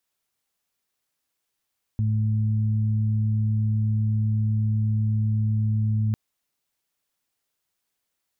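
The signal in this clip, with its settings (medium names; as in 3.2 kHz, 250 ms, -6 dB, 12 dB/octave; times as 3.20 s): steady additive tone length 4.15 s, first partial 108 Hz, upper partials -10 dB, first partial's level -20 dB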